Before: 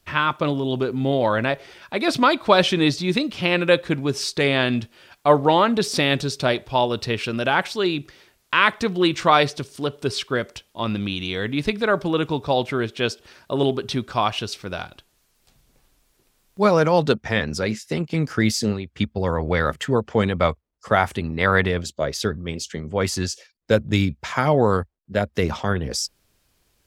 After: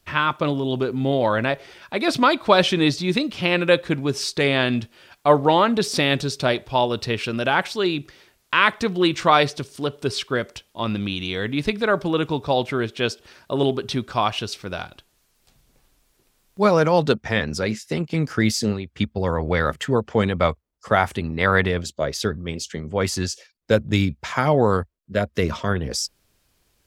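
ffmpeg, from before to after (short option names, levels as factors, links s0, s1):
-filter_complex "[0:a]asettb=1/sr,asplit=3[s0][s1][s2];[s0]atrim=end=24.814[s3];[s1]atrim=start=24.81:end=25.68,asetpts=PTS-STARTPTS,afade=t=in:d=0.004:c=qsin,afade=t=out:st=0.866:d=0.004:c=qsin,asuperstop=centerf=810:order=8:qfactor=4.6[s4];[s2]atrim=start=25.676[s5];[s3][s4]acrossfade=d=0.004:c1=hsin:c2=qsin[s6];[s6][s5]acrossfade=d=0.004:c1=qsin:c2=hsin"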